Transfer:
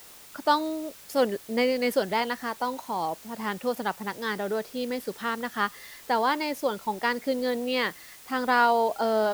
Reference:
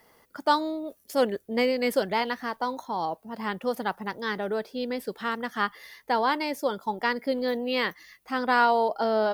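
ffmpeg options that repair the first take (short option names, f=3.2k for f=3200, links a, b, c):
-af "afwtdn=0.0035"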